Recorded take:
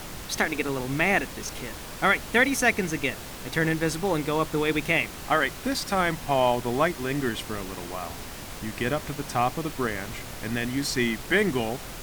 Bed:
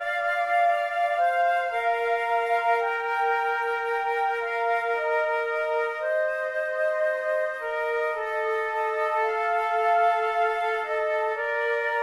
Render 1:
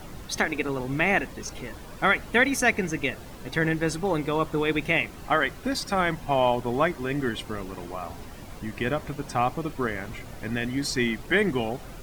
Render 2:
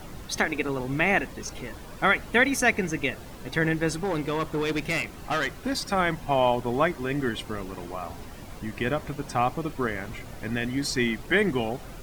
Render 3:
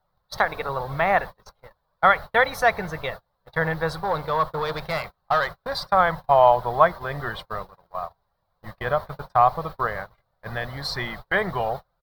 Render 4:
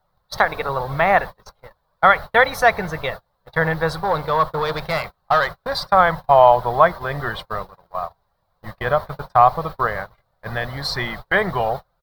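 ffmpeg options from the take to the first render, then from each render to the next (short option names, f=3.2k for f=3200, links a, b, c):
-af "afftdn=nr=10:nf=-39"
-filter_complex "[0:a]asettb=1/sr,asplit=3[a][b][c];[a]atrim=end=3.964[d];[b]atrim=start=3.96:end=5.71,asetpts=PTS-STARTPTS,afade=t=in:d=0.004:c=qsin,afade=t=out:st=1.746:d=0.004:c=qsin,asoftclip=type=hard:threshold=-22.5dB[e];[c]atrim=start=5.706[f];[d][e]acrossfade=d=0.004:c1=hsin:c2=qsin[g];[g][f]acrossfade=d=0.004:c1=qsin:c2=hsin"
-af "agate=range=-34dB:threshold=-32dB:ratio=16:detection=peak,firequalizer=gain_entry='entry(170,0);entry(260,-18);entry(530,6);entry(1100,10);entry(2600,-10);entry(4000,6);entry(6700,-15);entry(15000,3)':delay=0.05:min_phase=1"
-af "volume=4.5dB,alimiter=limit=-1dB:level=0:latency=1"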